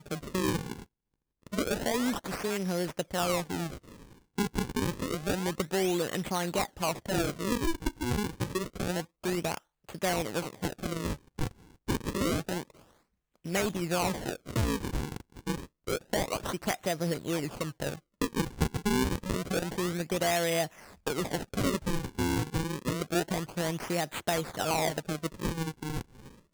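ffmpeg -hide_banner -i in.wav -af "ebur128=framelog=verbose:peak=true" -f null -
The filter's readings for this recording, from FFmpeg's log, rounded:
Integrated loudness:
  I:         -32.2 LUFS
  Threshold: -42.4 LUFS
Loudness range:
  LRA:         3.0 LU
  Threshold: -52.4 LUFS
  LRA low:   -33.8 LUFS
  LRA high:  -30.9 LUFS
True peak:
  Peak:      -11.2 dBFS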